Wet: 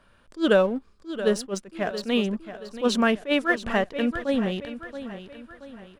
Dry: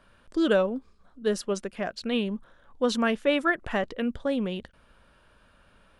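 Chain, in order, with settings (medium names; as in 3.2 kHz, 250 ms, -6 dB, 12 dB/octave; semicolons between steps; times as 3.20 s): in parallel at -4.5 dB: crossover distortion -41 dBFS; on the sum: feedback delay 677 ms, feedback 43%, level -12.5 dB; attacks held to a fixed rise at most 300 dB/s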